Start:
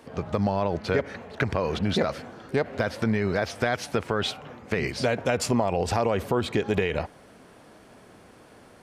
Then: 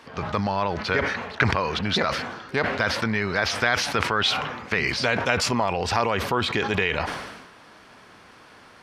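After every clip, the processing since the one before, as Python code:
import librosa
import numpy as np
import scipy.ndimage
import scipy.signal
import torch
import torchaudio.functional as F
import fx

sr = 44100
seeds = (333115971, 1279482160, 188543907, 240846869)

y = fx.band_shelf(x, sr, hz=2300.0, db=9.5, octaves=3.0)
y = fx.sustainer(y, sr, db_per_s=48.0)
y = F.gain(torch.from_numpy(y), -2.5).numpy()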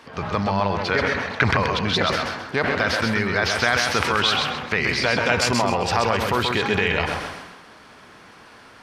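y = fx.echo_feedback(x, sr, ms=131, feedback_pct=30, wet_db=-4.5)
y = F.gain(torch.from_numpy(y), 1.5).numpy()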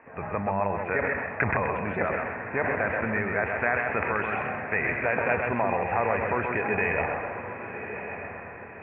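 y = scipy.signal.sosfilt(scipy.signal.cheby1(6, 6, 2600.0, 'lowpass', fs=sr, output='sos'), x)
y = fx.echo_diffused(y, sr, ms=1164, feedback_pct=42, wet_db=-9.5)
y = F.gain(torch.from_numpy(y), -2.5).numpy()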